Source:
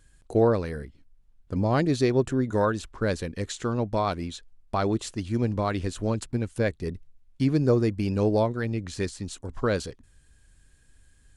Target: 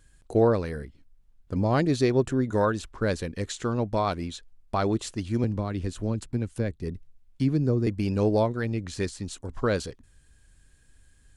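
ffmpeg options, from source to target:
-filter_complex "[0:a]asettb=1/sr,asplit=3[a][b][c];[a]atrim=end=5.444[d];[b]atrim=start=5.44:end=7.87,asetpts=PTS-STARTPTS,afade=t=in:d=0.004:c=qsin,afade=t=out:st=2.426:d=0.004:c=qsin,acrossover=split=340[e][f];[f]acompressor=threshold=-40dB:ratio=2[g];[e][g]amix=inputs=2:normalize=0[h];[c]atrim=start=7.866[i];[d][h]acrossfade=d=0.004:c1=hsin:c2=qsin[j];[j][i]acrossfade=d=0.004:c1=qsin:c2=hsin"

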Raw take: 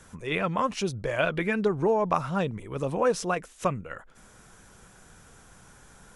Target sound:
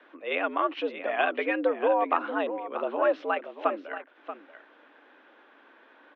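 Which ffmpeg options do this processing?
-filter_complex "[0:a]asplit=2[a][b];[b]aecho=0:1:634:0.266[c];[a][c]amix=inputs=2:normalize=0,highpass=f=210:t=q:w=0.5412,highpass=f=210:t=q:w=1.307,lowpass=f=3.3k:t=q:w=0.5176,lowpass=f=3.3k:t=q:w=0.7071,lowpass=f=3.3k:t=q:w=1.932,afreqshift=92"

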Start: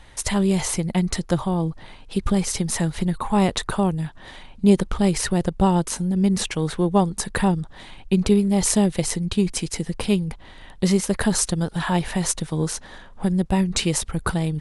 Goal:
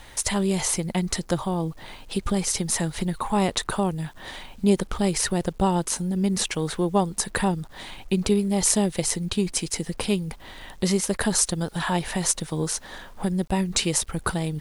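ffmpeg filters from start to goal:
-filter_complex "[0:a]bass=f=250:g=-4,treble=f=4k:g=3,asplit=2[a][b];[b]acompressor=threshold=-34dB:ratio=16,volume=1dB[c];[a][c]amix=inputs=2:normalize=0,acrusher=bits=8:mix=0:aa=0.000001,volume=-3dB"

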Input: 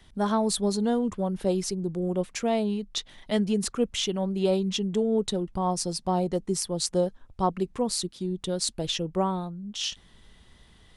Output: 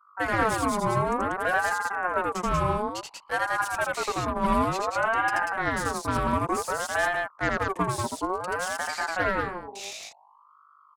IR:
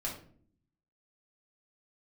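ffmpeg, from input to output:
-filter_complex "[0:a]anlmdn=0.0251,highpass=f=270:w=0.5412,highpass=f=270:w=1.3066,acrossover=split=5100[a][b];[b]acompressor=threshold=-43dB:ratio=4:attack=1:release=60[c];[a][c]amix=inputs=2:normalize=0,tiltshelf=f=660:g=7.5,acrossover=split=380[d][e];[d]acompressor=threshold=-29dB:ratio=8[f];[f][e]amix=inputs=2:normalize=0,aeval=exprs='val(0)+0.00141*(sin(2*PI*50*n/s)+sin(2*PI*2*50*n/s)/2+sin(2*PI*3*50*n/s)/3+sin(2*PI*4*50*n/s)/4+sin(2*PI*5*50*n/s)/5)':c=same,aexciter=amount=4.9:drive=3.4:freq=6.1k,aeval=exprs='0.237*(cos(1*acos(clip(val(0)/0.237,-1,1)))-cos(1*PI/2))+0.0531*(cos(2*acos(clip(val(0)/0.237,-1,1)))-cos(2*PI/2))+0.00266*(cos(3*acos(clip(val(0)/0.237,-1,1)))-cos(3*PI/2))+0.0075*(cos(5*acos(clip(val(0)/0.237,-1,1)))-cos(5*PI/2))+0.0266*(cos(8*acos(clip(val(0)/0.237,-1,1)))-cos(8*PI/2))':c=same,asplit=2[g][h];[h]aecho=0:1:81.63|189.5:0.794|0.708[i];[g][i]amix=inputs=2:normalize=0,aeval=exprs='val(0)*sin(2*PI*910*n/s+910*0.35/0.56*sin(2*PI*0.56*n/s))':c=same"

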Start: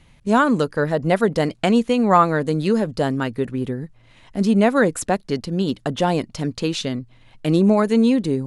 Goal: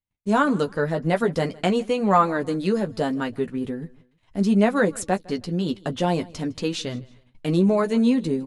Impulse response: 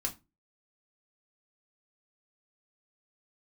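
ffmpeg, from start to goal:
-af "agate=range=-38dB:threshold=-46dB:ratio=16:detection=peak,flanger=delay=9.5:depth=2.8:regen=-22:speed=0.43:shape=triangular,aecho=1:1:158|316:0.0708|0.0234"

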